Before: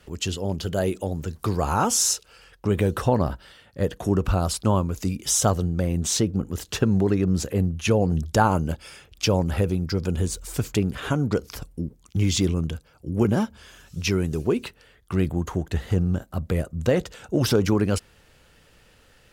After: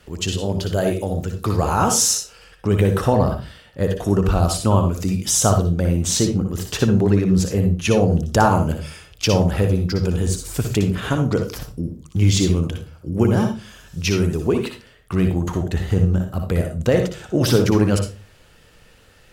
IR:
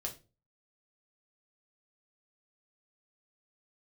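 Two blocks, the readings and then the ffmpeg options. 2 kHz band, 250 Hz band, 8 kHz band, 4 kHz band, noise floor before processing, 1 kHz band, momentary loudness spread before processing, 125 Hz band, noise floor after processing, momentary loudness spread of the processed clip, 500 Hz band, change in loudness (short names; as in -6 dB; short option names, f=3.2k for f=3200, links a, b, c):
+4.0 dB, +4.5 dB, +4.0 dB, +4.0 dB, -57 dBFS, +4.5 dB, 9 LU, +5.5 dB, -51 dBFS, 10 LU, +4.5 dB, +4.5 dB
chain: -filter_complex "[0:a]asplit=2[a][b];[1:a]atrim=start_sample=2205,adelay=59[c];[b][c]afir=irnorm=-1:irlink=0,volume=-4.5dB[d];[a][d]amix=inputs=2:normalize=0,volume=3dB"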